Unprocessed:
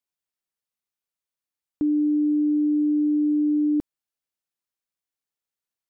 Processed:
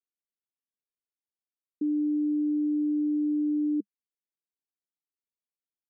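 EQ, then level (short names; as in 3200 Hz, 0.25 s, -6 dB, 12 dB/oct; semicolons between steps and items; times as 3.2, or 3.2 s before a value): Chebyshev band-pass 200–450 Hz, order 3; -5.5 dB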